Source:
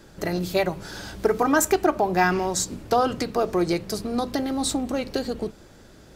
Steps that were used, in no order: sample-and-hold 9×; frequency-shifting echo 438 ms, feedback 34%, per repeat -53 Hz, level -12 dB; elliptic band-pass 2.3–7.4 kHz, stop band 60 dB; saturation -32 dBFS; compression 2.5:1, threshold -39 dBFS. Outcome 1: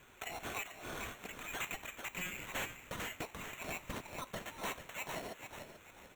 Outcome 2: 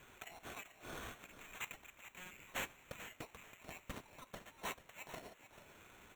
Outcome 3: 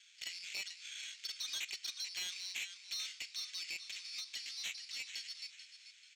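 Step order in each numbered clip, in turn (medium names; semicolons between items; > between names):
elliptic band-pass > sample-and-hold > frequency-shifting echo > saturation > compression; compression > saturation > elliptic band-pass > sample-and-hold > frequency-shifting echo; sample-and-hold > elliptic band-pass > compression > frequency-shifting echo > saturation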